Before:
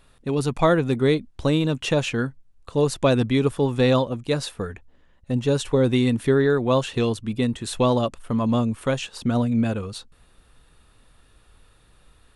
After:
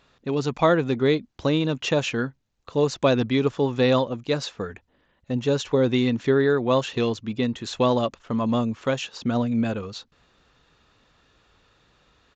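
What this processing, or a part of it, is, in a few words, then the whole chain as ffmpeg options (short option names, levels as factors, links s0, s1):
Bluetooth headset: -af "highpass=f=160:p=1,aresample=16000,aresample=44100" -ar 16000 -c:a sbc -b:a 64k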